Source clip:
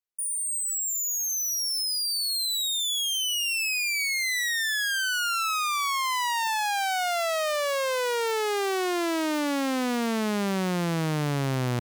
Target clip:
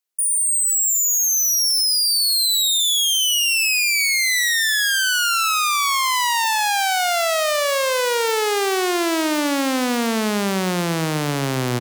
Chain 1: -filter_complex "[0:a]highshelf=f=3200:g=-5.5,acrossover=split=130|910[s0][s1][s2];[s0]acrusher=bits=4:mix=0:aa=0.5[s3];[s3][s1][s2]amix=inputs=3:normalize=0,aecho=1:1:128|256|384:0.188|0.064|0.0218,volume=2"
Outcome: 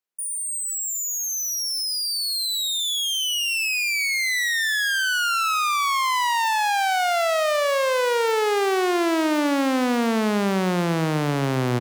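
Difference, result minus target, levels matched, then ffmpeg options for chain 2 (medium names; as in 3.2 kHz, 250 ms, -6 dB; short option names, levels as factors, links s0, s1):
8 kHz band -4.0 dB
-filter_complex "[0:a]highshelf=f=3200:g=4.5,acrossover=split=130|910[s0][s1][s2];[s0]acrusher=bits=4:mix=0:aa=0.5[s3];[s3][s1][s2]amix=inputs=3:normalize=0,aecho=1:1:128|256|384:0.188|0.064|0.0218,volume=2"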